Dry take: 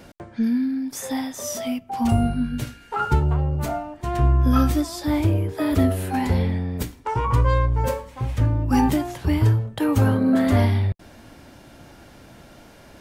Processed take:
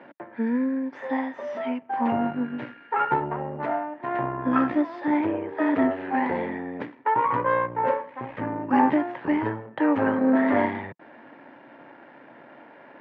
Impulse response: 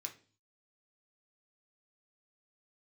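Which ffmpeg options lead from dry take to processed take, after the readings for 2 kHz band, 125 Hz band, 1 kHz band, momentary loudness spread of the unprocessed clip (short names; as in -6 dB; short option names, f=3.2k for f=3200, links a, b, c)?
+3.0 dB, -19.0 dB, +3.0 dB, 10 LU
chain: -af "aeval=exprs='if(lt(val(0),0),0.447*val(0),val(0))':c=same,highpass=f=180:w=0.5412,highpass=f=180:w=1.3066,equalizer=f=190:t=q:w=4:g=-7,equalizer=f=290:t=q:w=4:g=3,equalizer=f=560:t=q:w=4:g=4,equalizer=f=920:t=q:w=4:g=8,equalizer=f=1.8k:t=q:w=4:g=8,lowpass=f=2.5k:w=0.5412,lowpass=f=2.5k:w=1.3066"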